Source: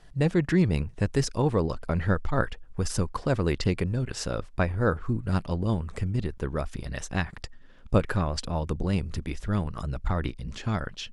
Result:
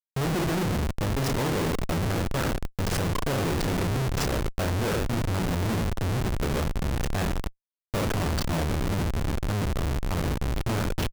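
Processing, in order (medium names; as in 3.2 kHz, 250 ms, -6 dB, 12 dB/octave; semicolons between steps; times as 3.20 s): reverse bouncing-ball echo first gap 30 ms, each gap 1.25×, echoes 5; Schmitt trigger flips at -30 dBFS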